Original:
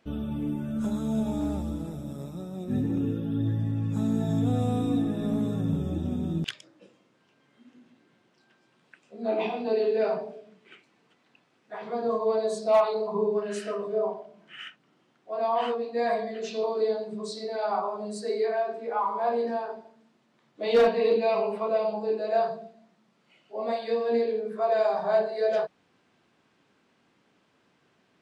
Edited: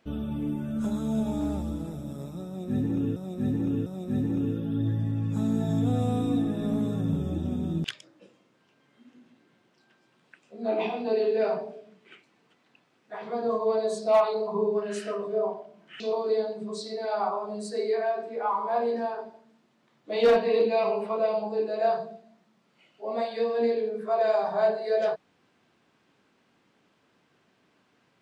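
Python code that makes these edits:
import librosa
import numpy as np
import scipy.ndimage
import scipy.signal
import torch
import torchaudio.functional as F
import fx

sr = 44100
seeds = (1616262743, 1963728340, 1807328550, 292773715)

y = fx.edit(x, sr, fx.repeat(start_s=2.46, length_s=0.7, count=3),
    fx.cut(start_s=14.6, length_s=1.91), tone=tone)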